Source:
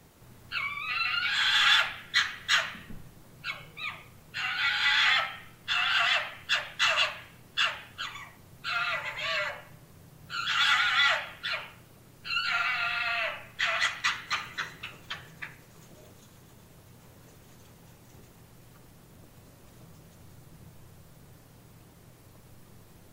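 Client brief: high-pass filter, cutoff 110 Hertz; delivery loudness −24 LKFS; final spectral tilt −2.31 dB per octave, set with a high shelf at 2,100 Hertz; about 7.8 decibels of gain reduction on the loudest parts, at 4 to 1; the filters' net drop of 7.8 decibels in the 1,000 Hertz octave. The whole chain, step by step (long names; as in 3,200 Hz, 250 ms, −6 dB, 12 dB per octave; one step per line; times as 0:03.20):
high-pass filter 110 Hz
parametric band 1,000 Hz −9 dB
high-shelf EQ 2,100 Hz −8.5 dB
downward compressor 4 to 1, threshold −35 dBFS
level +14.5 dB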